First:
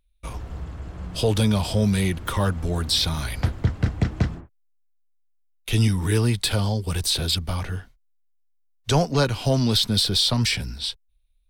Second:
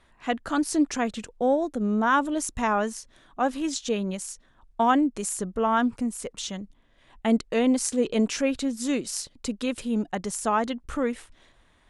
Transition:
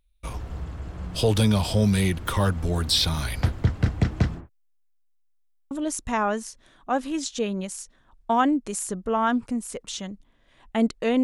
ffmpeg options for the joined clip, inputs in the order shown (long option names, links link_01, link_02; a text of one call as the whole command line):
ffmpeg -i cue0.wav -i cue1.wav -filter_complex "[0:a]apad=whole_dur=11.23,atrim=end=11.23,asplit=4[link_01][link_02][link_03][link_04];[link_01]atrim=end=5.472[link_05];[link_02]atrim=start=5.388:end=5.472[link_06];[link_03]atrim=start=5.388:end=5.472[link_07];[link_04]atrim=start=5.388:end=5.472[link_08];[1:a]atrim=start=2.208:end=7.73[link_09];[link_05][link_06]acrossfade=duration=0.004:curve1=hsin:curve2=hsin[link_10];[link_10][link_07]acrossfade=duration=0.004:curve1=hsin:curve2=hsin[link_11];[link_11][link_08]acrossfade=duration=0.004:curve1=hsin:curve2=hsin[link_12];[link_12][link_09]acrossfade=duration=0.004:curve1=hsin:curve2=hsin" out.wav